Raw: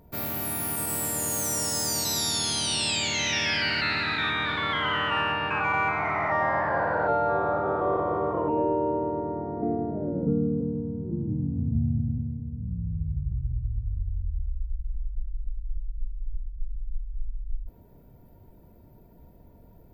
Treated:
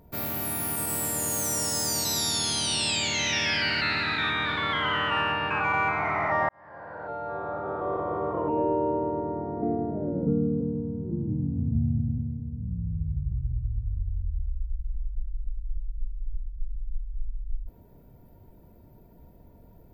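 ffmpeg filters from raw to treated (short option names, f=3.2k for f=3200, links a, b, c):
-filter_complex "[0:a]asplit=2[a][b];[a]atrim=end=6.49,asetpts=PTS-STARTPTS,afade=t=out:st=6.486:d=0.004:c=hsin[c];[b]atrim=start=6.49,asetpts=PTS-STARTPTS,afade=t=in:d=2.27[d];[c][d]concat=n=2:v=0:a=1"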